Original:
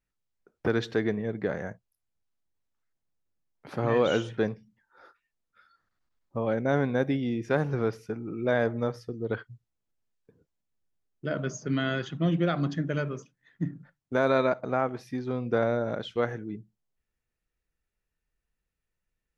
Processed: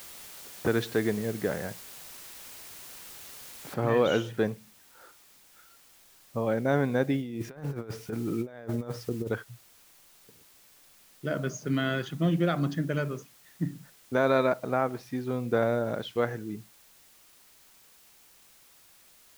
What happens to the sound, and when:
3.74 noise floor step -46 dB -58 dB
7.2–9.29 negative-ratio compressor -33 dBFS, ratio -0.5

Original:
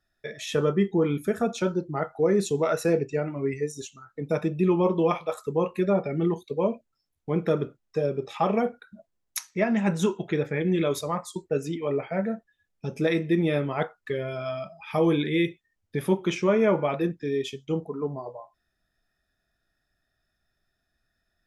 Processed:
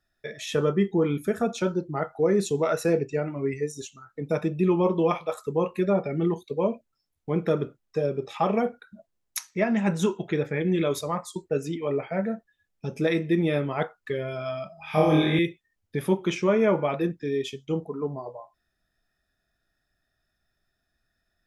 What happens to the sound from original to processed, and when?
14.75–15.39 flutter echo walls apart 4.4 m, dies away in 0.9 s

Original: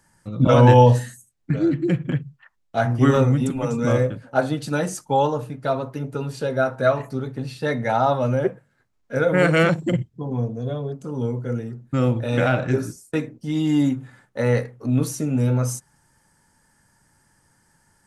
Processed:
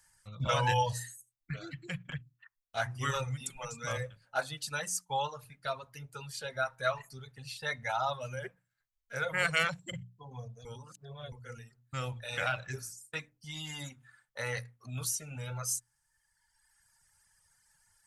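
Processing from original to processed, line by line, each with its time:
10.65–11.32 reverse
whole clip: reverb removal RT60 1.5 s; passive tone stack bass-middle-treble 10-0-10; notches 60/120/180/240/300 Hz

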